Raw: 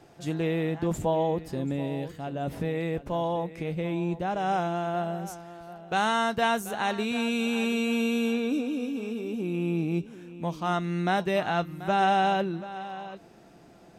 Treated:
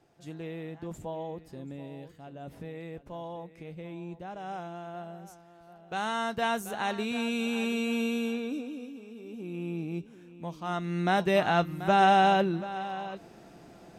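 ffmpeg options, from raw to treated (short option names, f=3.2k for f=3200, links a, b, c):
-af "volume=13dB,afade=t=in:st=5.53:d=1.11:silence=0.375837,afade=t=out:st=8.03:d=1.03:silence=0.281838,afade=t=in:st=9.06:d=0.54:silence=0.446684,afade=t=in:st=10.63:d=0.74:silence=0.354813"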